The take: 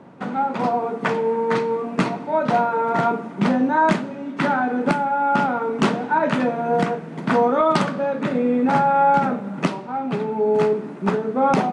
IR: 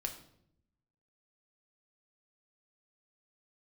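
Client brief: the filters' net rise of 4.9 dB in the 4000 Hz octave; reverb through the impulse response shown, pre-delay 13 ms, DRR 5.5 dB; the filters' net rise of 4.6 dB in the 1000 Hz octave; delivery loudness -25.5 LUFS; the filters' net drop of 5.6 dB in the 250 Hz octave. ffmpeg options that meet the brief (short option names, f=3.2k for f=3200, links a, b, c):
-filter_complex "[0:a]equalizer=f=250:t=o:g=-7,equalizer=f=1k:t=o:g=6,equalizer=f=4k:t=o:g=6,asplit=2[a][b];[1:a]atrim=start_sample=2205,adelay=13[c];[b][c]afir=irnorm=-1:irlink=0,volume=-5.5dB[d];[a][d]amix=inputs=2:normalize=0,volume=-8.5dB"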